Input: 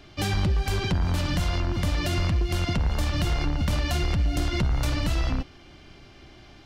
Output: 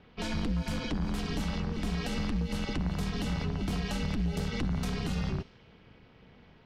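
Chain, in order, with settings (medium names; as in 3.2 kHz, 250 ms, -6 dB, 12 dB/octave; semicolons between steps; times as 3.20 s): ring modulator 120 Hz; level-controlled noise filter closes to 2.6 kHz, open at -22 dBFS; trim -4.5 dB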